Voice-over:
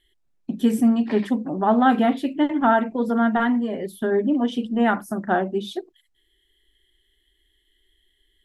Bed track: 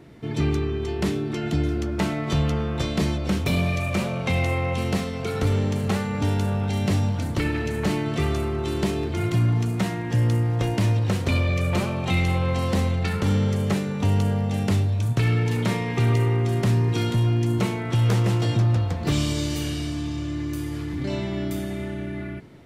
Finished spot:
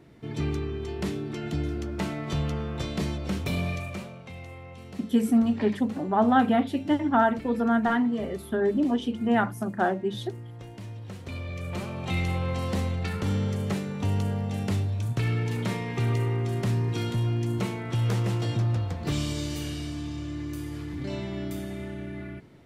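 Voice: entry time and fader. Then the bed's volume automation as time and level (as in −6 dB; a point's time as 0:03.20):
4.50 s, −3.5 dB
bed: 0:03.72 −6 dB
0:04.29 −19 dB
0:10.90 −19 dB
0:12.17 −5.5 dB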